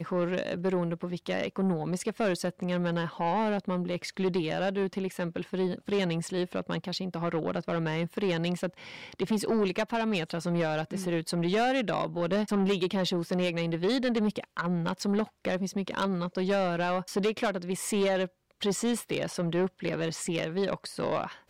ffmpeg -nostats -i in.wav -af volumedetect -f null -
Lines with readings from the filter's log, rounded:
mean_volume: -29.8 dB
max_volume: -21.6 dB